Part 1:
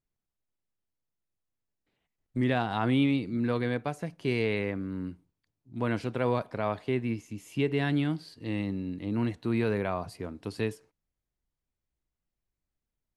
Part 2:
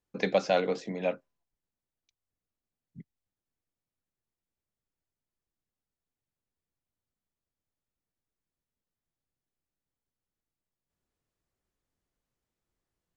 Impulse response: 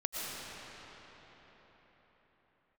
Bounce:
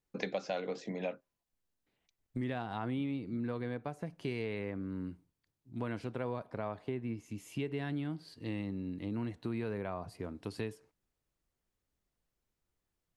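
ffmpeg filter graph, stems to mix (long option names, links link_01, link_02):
-filter_complex "[0:a]adynamicequalizer=threshold=0.00447:dfrequency=1700:dqfactor=0.7:tfrequency=1700:tqfactor=0.7:attack=5:release=100:ratio=0.375:range=3.5:mode=cutabove:tftype=highshelf,volume=-2.5dB[link_01];[1:a]volume=-1.5dB[link_02];[link_01][link_02]amix=inputs=2:normalize=0,acompressor=threshold=-35dB:ratio=3"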